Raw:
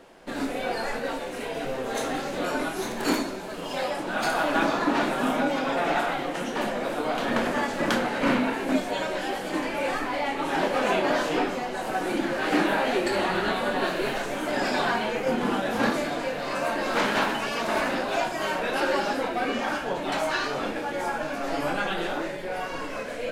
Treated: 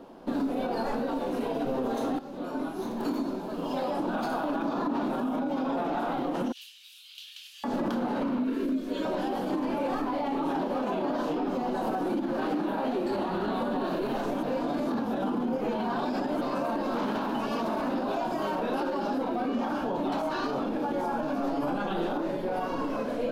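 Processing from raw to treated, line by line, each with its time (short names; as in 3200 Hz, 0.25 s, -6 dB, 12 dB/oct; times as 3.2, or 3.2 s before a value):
2.19–4.25 fade in linear, from -15 dB
6.52–7.64 elliptic high-pass 2800 Hz, stop band 80 dB
8.44–9.05 fixed phaser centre 330 Hz, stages 4
14.43–16.41 reverse
whole clip: graphic EQ 250/1000/2000/8000 Hz +10/+5/-11/-11 dB; compressor, threshold -22 dBFS; limiter -21.5 dBFS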